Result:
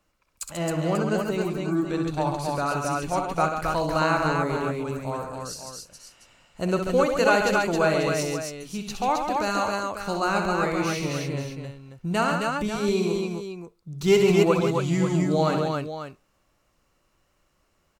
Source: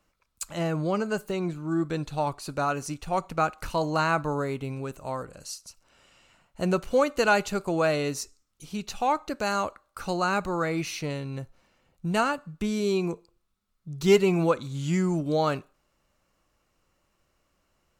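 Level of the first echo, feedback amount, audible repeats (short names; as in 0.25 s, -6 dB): -7.0 dB, no steady repeat, 4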